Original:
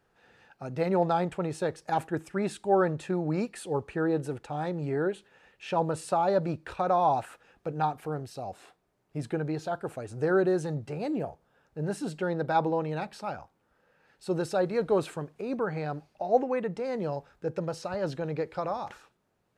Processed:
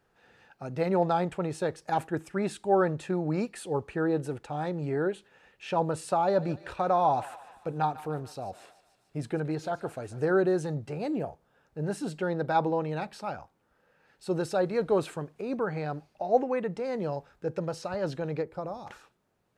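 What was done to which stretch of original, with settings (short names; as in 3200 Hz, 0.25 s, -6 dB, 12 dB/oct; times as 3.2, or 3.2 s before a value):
6.24–10.25 thinning echo 0.147 s, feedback 69%, high-pass 860 Hz, level -14.5 dB
18.41–18.85 bell 4900 Hz -> 1300 Hz -12.5 dB 2.8 oct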